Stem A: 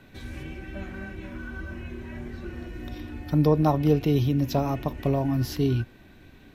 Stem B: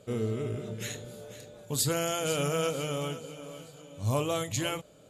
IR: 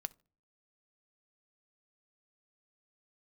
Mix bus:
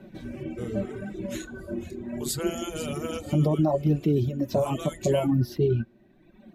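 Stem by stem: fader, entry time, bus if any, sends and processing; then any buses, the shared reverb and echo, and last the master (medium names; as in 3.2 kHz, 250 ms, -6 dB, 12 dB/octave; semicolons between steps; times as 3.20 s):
-2.5 dB, 0.00 s, no send, flange 0.78 Hz, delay 5 ms, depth 5.1 ms, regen -21%; small resonant body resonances 210/350/570 Hz, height 17 dB, ringing for 40 ms
-2.5 dB, 0.50 s, no send, none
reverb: none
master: reverb removal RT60 1.6 s; peak limiter -14.5 dBFS, peak gain reduction 9.5 dB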